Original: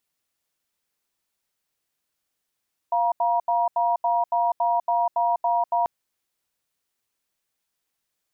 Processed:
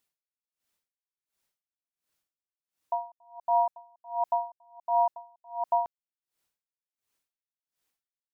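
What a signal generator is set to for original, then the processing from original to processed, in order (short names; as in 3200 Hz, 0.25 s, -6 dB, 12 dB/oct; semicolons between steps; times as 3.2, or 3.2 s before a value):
cadence 697 Hz, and 951 Hz, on 0.20 s, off 0.08 s, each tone -21.5 dBFS 2.94 s
dB-linear tremolo 1.4 Hz, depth 37 dB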